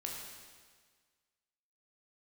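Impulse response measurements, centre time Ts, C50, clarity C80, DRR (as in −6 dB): 76 ms, 1.5 dB, 3.0 dB, −1.5 dB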